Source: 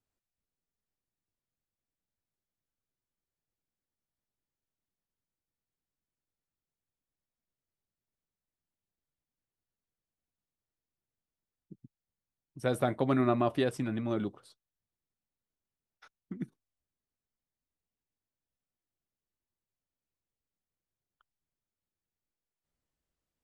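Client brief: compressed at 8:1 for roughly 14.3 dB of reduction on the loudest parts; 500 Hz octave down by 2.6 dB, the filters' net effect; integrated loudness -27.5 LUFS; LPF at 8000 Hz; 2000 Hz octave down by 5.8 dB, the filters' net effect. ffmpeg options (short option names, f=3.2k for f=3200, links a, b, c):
-af "lowpass=8k,equalizer=f=500:t=o:g=-3,equalizer=f=2k:t=o:g=-8,acompressor=threshold=-40dB:ratio=8,volume=18.5dB"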